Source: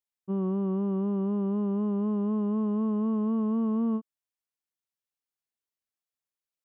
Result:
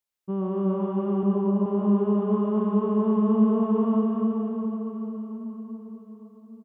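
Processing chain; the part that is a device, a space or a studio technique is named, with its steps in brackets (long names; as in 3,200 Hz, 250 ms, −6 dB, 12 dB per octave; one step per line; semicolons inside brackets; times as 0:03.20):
0:01.23–0:01.66: elliptic low-pass filter 990 Hz
cave (single-tap delay 279 ms −8.5 dB; convolution reverb RT60 4.9 s, pre-delay 78 ms, DRR −2.5 dB)
dynamic equaliser 220 Hz, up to −4 dB, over −35 dBFS, Q 1.2
level +3.5 dB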